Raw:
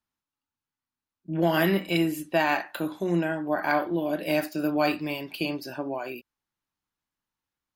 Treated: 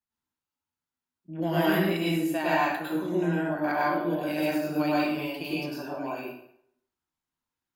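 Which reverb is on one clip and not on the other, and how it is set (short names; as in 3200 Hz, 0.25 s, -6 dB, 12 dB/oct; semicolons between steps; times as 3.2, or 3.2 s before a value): plate-style reverb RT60 0.71 s, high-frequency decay 0.75×, pre-delay 90 ms, DRR -6.5 dB; gain -8.5 dB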